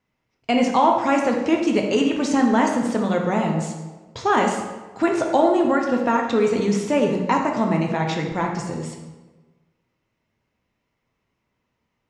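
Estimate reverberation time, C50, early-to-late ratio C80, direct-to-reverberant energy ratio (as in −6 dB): 1.3 s, 4.5 dB, 6.5 dB, 1.0 dB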